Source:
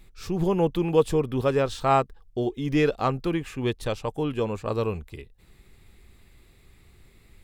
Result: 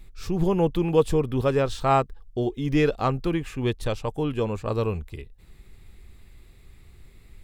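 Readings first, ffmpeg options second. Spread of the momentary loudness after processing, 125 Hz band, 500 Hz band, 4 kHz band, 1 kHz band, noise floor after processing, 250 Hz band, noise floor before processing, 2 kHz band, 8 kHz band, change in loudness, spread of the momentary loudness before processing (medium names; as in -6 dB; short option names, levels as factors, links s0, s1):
8 LU, +2.5 dB, +0.5 dB, 0.0 dB, 0.0 dB, -52 dBFS, +1.0 dB, -57 dBFS, 0.0 dB, 0.0 dB, +0.5 dB, 8 LU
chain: -af "lowshelf=f=96:g=7.5"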